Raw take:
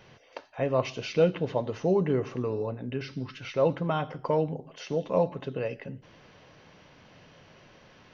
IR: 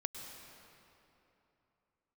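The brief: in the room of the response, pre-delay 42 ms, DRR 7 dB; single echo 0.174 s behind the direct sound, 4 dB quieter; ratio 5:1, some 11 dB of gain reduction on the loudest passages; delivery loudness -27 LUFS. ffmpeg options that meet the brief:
-filter_complex "[0:a]acompressor=threshold=-30dB:ratio=5,aecho=1:1:174:0.631,asplit=2[a][b];[1:a]atrim=start_sample=2205,adelay=42[c];[b][c]afir=irnorm=-1:irlink=0,volume=-6.5dB[d];[a][d]amix=inputs=2:normalize=0,volume=7dB"

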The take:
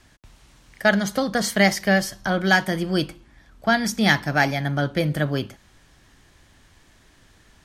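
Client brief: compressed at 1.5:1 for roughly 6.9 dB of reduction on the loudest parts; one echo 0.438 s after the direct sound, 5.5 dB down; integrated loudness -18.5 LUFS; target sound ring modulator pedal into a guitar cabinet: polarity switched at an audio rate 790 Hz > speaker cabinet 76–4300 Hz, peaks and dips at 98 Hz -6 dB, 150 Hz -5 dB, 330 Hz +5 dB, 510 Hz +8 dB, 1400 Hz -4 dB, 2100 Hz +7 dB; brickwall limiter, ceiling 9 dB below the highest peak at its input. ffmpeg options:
-af "acompressor=threshold=-32dB:ratio=1.5,alimiter=limit=-20dB:level=0:latency=1,aecho=1:1:438:0.531,aeval=exprs='val(0)*sgn(sin(2*PI*790*n/s))':c=same,highpass=76,equalizer=f=98:t=q:w=4:g=-6,equalizer=f=150:t=q:w=4:g=-5,equalizer=f=330:t=q:w=4:g=5,equalizer=f=510:t=q:w=4:g=8,equalizer=f=1.4k:t=q:w=4:g=-4,equalizer=f=2.1k:t=q:w=4:g=7,lowpass=f=4.3k:w=0.5412,lowpass=f=4.3k:w=1.3066,volume=10dB"

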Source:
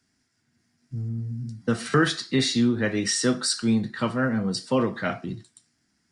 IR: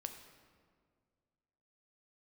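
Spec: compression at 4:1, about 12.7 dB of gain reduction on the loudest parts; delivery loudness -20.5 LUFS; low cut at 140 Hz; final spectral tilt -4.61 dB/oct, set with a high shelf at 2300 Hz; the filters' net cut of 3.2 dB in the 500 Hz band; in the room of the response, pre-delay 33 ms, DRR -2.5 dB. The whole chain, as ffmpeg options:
-filter_complex "[0:a]highpass=140,equalizer=f=500:t=o:g=-3.5,highshelf=f=2.3k:g=-6,acompressor=threshold=-35dB:ratio=4,asplit=2[a][b];[1:a]atrim=start_sample=2205,adelay=33[c];[b][c]afir=irnorm=-1:irlink=0,volume=5.5dB[d];[a][d]amix=inputs=2:normalize=0,volume=12.5dB"

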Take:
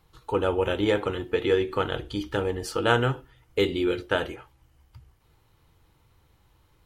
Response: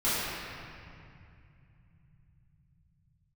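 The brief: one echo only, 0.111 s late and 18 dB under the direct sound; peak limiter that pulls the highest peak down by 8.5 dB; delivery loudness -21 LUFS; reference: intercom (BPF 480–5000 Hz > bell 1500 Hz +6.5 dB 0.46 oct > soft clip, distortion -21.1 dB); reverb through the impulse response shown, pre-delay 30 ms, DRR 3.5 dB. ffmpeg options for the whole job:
-filter_complex "[0:a]alimiter=limit=-15dB:level=0:latency=1,aecho=1:1:111:0.126,asplit=2[a][b];[1:a]atrim=start_sample=2205,adelay=30[c];[b][c]afir=irnorm=-1:irlink=0,volume=-16.5dB[d];[a][d]amix=inputs=2:normalize=0,highpass=480,lowpass=5k,equalizer=f=1.5k:t=o:w=0.46:g=6.5,asoftclip=threshold=-15.5dB,volume=8.5dB"

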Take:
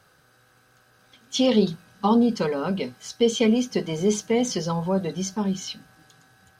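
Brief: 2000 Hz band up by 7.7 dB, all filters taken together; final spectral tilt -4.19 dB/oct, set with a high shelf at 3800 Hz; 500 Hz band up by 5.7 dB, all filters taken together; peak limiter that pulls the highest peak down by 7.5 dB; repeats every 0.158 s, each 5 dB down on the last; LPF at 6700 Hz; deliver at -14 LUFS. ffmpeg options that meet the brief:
-af "lowpass=6.7k,equalizer=f=500:t=o:g=6,equalizer=f=2k:t=o:g=7,highshelf=f=3.8k:g=7.5,alimiter=limit=-11.5dB:level=0:latency=1,aecho=1:1:158|316|474|632|790|948|1106:0.562|0.315|0.176|0.0988|0.0553|0.031|0.0173,volume=7dB"

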